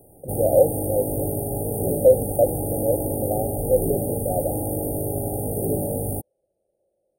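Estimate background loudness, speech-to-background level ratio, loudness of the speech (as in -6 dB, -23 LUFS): -26.0 LUFS, 2.5 dB, -23.5 LUFS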